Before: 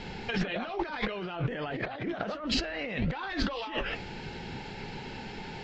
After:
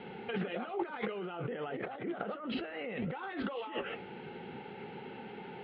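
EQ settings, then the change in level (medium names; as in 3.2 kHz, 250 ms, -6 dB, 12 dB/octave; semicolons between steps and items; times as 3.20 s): distance through air 420 m; cabinet simulation 290–3200 Hz, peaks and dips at 300 Hz -7 dB, 630 Hz -9 dB, 1 kHz -9 dB, 1.7 kHz -9 dB, 2.4 kHz -6 dB; +3.5 dB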